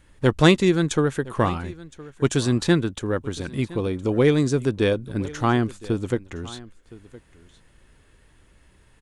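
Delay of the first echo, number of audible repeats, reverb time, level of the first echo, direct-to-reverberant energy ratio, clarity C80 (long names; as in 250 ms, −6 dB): 1,015 ms, 1, no reverb audible, −20.0 dB, no reverb audible, no reverb audible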